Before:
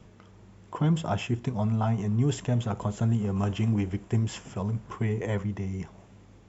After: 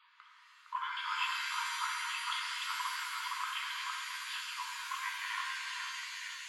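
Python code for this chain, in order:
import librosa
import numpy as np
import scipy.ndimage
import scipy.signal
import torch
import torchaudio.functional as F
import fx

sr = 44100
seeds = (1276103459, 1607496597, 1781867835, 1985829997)

y = fx.brickwall_bandpass(x, sr, low_hz=920.0, high_hz=4800.0)
y = fx.echo_stepped(y, sr, ms=461, hz=1300.0, octaves=0.7, feedback_pct=70, wet_db=-2.0)
y = fx.rev_shimmer(y, sr, seeds[0], rt60_s=2.3, semitones=7, shimmer_db=-2, drr_db=0.5)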